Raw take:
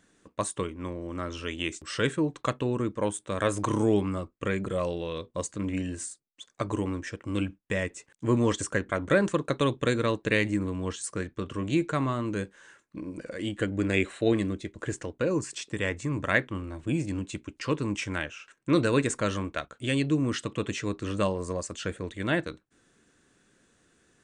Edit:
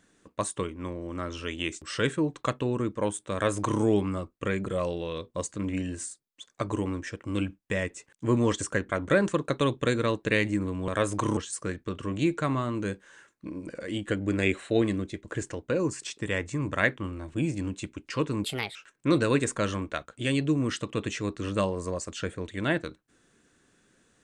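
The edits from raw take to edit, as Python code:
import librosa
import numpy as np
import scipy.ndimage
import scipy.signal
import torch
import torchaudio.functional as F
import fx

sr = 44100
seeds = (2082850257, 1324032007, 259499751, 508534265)

y = fx.edit(x, sr, fx.duplicate(start_s=3.33, length_s=0.49, to_s=10.88),
    fx.speed_span(start_s=17.95, length_s=0.43, speed=1.37), tone=tone)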